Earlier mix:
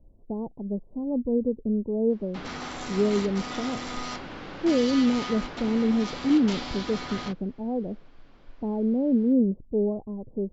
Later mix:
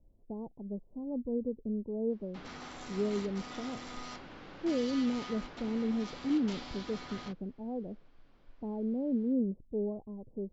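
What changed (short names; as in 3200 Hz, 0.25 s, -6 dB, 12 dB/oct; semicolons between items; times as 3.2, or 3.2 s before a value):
speech -9.0 dB; background -10.0 dB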